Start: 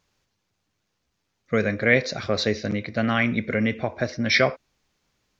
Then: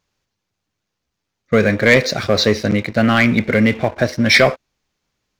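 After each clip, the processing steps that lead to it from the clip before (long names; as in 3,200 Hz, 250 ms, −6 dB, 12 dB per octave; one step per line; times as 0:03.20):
leveller curve on the samples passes 2
level +2 dB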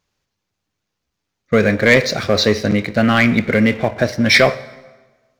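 dense smooth reverb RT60 1.3 s, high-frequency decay 0.75×, DRR 15.5 dB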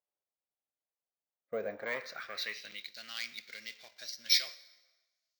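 band-pass filter sweep 640 Hz → 4,700 Hz, 0:01.66–0:02.98
first-order pre-emphasis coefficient 0.8
bad sample-rate conversion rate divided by 2×, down none, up hold
level −2.5 dB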